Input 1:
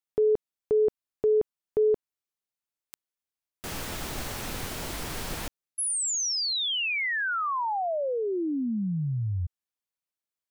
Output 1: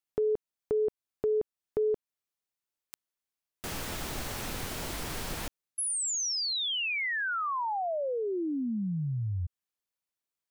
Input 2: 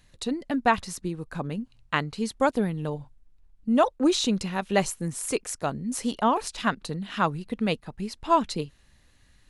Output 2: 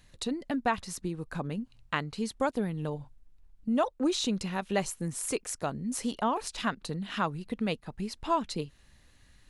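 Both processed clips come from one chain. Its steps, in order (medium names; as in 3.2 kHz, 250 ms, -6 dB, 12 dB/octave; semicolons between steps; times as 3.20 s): compression 1.5:1, threshold -35 dBFS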